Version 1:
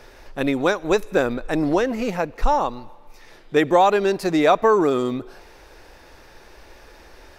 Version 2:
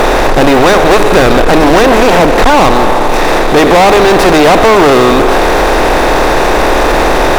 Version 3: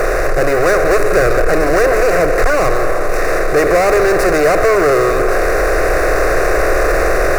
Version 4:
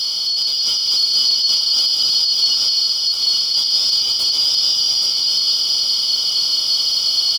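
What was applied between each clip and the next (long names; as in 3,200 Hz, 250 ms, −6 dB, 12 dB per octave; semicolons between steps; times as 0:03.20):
compressor on every frequency bin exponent 0.4; hum removal 105.4 Hz, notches 4; leveller curve on the samples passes 5; level −2 dB
automatic gain control; phaser with its sweep stopped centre 890 Hz, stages 6; level −4.5 dB
band-splitting scrambler in four parts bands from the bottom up 4321; on a send: single-tap delay 829 ms −4 dB; on the sum: level −7 dB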